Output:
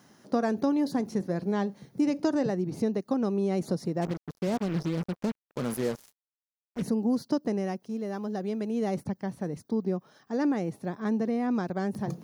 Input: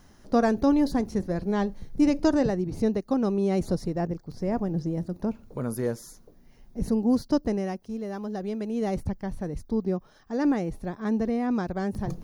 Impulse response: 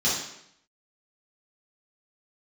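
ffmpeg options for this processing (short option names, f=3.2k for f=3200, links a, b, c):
-filter_complex "[0:a]highpass=f=130:w=0.5412,highpass=f=130:w=1.3066,acompressor=threshold=-24dB:ratio=2.5,asplit=3[a][b][c];[a]afade=t=out:st=4.01:d=0.02[d];[b]acrusher=bits=5:mix=0:aa=0.5,afade=t=in:st=4.01:d=0.02,afade=t=out:st=6.81:d=0.02[e];[c]afade=t=in:st=6.81:d=0.02[f];[d][e][f]amix=inputs=3:normalize=0"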